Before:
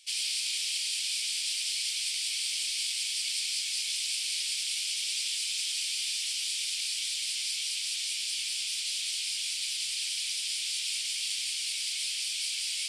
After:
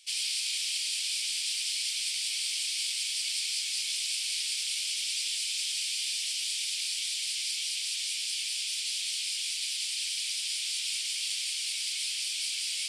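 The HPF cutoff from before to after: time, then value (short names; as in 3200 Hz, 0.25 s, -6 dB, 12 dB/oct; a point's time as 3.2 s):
HPF 24 dB/oct
4.16 s 530 Hz
5.26 s 1300 Hz
10.23 s 1300 Hz
10.9 s 410 Hz
11.86 s 410 Hz
12.36 s 98 Hz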